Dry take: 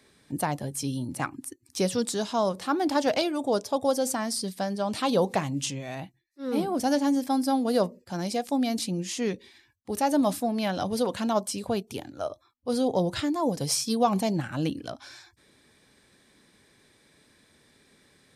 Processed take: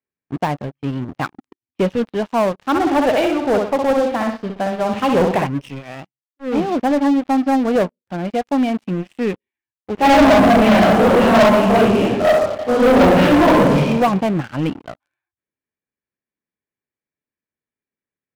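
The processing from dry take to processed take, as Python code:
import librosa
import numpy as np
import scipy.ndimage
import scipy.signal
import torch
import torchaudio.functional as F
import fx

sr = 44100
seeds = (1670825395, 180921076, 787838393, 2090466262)

y = fx.echo_feedback(x, sr, ms=63, feedback_pct=47, wet_db=-4.5, at=(2.65, 5.47))
y = fx.highpass(y, sr, hz=42.0, slope=24, at=(6.91, 7.76))
y = fx.reverb_throw(y, sr, start_s=9.94, length_s=3.91, rt60_s=1.2, drr_db=-10.5)
y = scipy.signal.sosfilt(scipy.signal.cheby1(4, 1.0, 2800.0, 'lowpass', fs=sr, output='sos'), y)
y = fx.leveller(y, sr, passes=5)
y = fx.upward_expand(y, sr, threshold_db=-36.0, expansion=1.5)
y = y * 10.0 ** (-5.0 / 20.0)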